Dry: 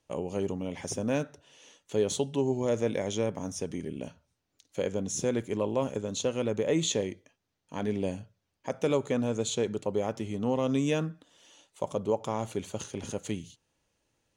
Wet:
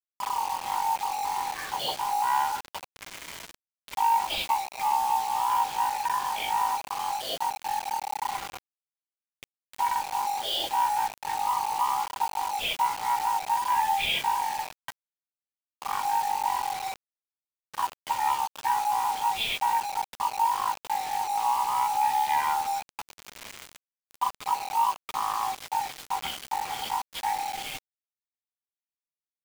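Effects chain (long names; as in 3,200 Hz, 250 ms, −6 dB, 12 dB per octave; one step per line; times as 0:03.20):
band-splitting scrambler in four parts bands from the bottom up 4123
low-shelf EQ 190 Hz −2 dB
in parallel at +3 dB: downward compressor 4 to 1, threshold −39 dBFS, peak gain reduction 14.5 dB
on the sum: leveller curve on the samples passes 1
reversed playback
upward compression, threshold −24 dBFS
reversed playback
flanger 0.5 Hz, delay 0.9 ms, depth 6.5 ms, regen −29%
change of speed 0.488×
bit reduction 6 bits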